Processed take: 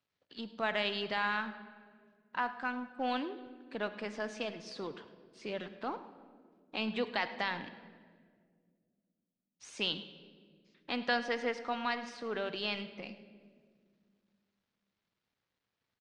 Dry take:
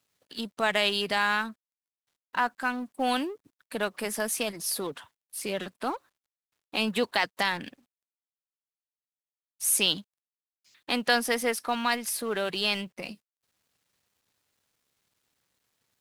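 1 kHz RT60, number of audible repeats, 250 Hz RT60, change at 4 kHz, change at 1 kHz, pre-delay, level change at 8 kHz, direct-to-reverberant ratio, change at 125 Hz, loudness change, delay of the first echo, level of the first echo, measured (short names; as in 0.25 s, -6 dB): 1.5 s, 1, 2.9 s, -9.5 dB, -6.5 dB, 24 ms, -25.5 dB, 10.5 dB, -6.5 dB, -8.5 dB, 0.105 s, -17.5 dB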